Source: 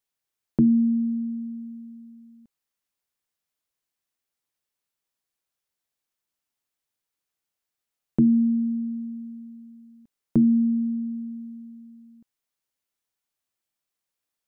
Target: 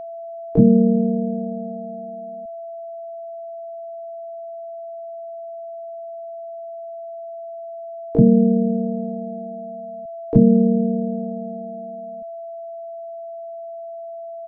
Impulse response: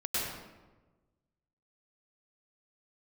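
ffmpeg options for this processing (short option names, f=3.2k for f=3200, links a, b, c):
-filter_complex "[0:a]bass=f=250:g=11,treble=f=4k:g=0,asplit=4[a][b][c][d];[b]asetrate=33038,aresample=44100,atempo=1.33484,volume=-18dB[e];[c]asetrate=37084,aresample=44100,atempo=1.18921,volume=-2dB[f];[d]asetrate=88200,aresample=44100,atempo=0.5,volume=-6dB[g];[a][e][f][g]amix=inputs=4:normalize=0,aeval=exprs='val(0)+0.0447*sin(2*PI*670*n/s)':c=same,volume=-3.5dB"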